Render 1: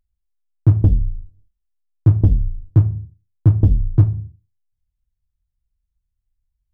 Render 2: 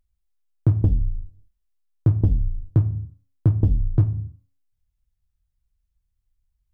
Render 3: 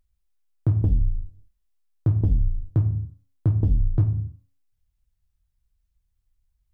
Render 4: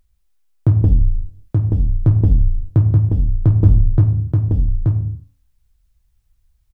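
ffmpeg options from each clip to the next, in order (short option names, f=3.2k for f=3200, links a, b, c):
-af "bandreject=f=272:t=h:w=4,bandreject=f=544:t=h:w=4,bandreject=f=816:t=h:w=4,bandreject=f=1.088k:t=h:w=4,bandreject=f=1.36k:t=h:w=4,acompressor=threshold=-21dB:ratio=2,volume=1.5dB"
-af "alimiter=limit=-14dB:level=0:latency=1:release=98,volume=1.5dB"
-filter_complex "[0:a]asplit=2[a][b];[b]asoftclip=type=tanh:threshold=-30dB,volume=-12dB[c];[a][c]amix=inputs=2:normalize=0,aecho=1:1:879:0.668,volume=7dB"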